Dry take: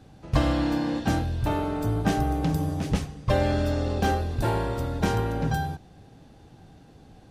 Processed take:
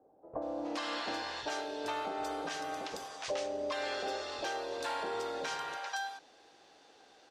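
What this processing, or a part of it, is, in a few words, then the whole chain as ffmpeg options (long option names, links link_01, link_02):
DJ mixer with the lows and highs turned down: -filter_complex "[0:a]asettb=1/sr,asplit=3[link_01][link_02][link_03];[link_01]atrim=end=2.664[link_04];[link_02]atrim=start=2.66:end=3.13,asetpts=PTS-STARTPTS,afade=type=in:duration=0.004:curve=qsin,afade=type=out:start_time=0.466:duration=0.004:curve=qsin,lowpass=frequency=10000:width=0.5412,lowpass=frequency=10000:width=1.3066[link_05];[link_03]atrim=start=3.126[link_06];[link_04][link_05]acrossfade=duration=0.004:curve1=hsin:curve2=qsin[link_07];[link_07][link_06]acrossfade=duration=0.004:curve1=qsin:curve2=hsin,bass=frequency=250:gain=-13,treble=frequency=4000:gain=6,acrossover=split=370 7100:gain=0.0708 1 0.0708[link_08][link_09][link_10];[link_08][link_09][link_10]amix=inputs=3:normalize=0,acrossover=split=740[link_11][link_12];[link_12]adelay=420[link_13];[link_11][link_13]amix=inputs=2:normalize=0,alimiter=level_in=2.5dB:limit=-24dB:level=0:latency=1:release=251,volume=-2.5dB"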